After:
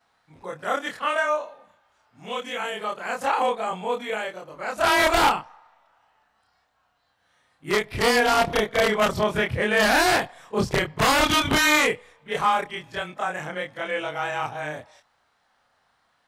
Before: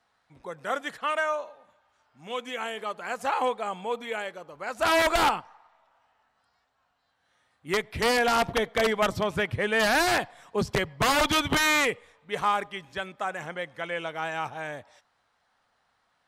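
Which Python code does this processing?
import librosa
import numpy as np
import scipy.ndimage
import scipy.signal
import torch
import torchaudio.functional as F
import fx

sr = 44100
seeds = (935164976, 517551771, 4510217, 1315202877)

y = fx.frame_reverse(x, sr, frame_ms=66.0)
y = y * librosa.db_to_amplitude(7.0)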